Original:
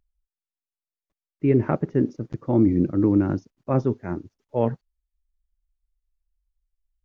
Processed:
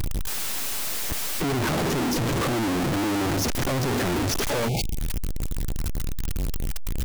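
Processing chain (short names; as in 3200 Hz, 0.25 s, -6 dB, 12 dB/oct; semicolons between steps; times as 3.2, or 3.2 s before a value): infinite clipping; spectral delete 4.69–4.97, 880–2100 Hz; gain +1.5 dB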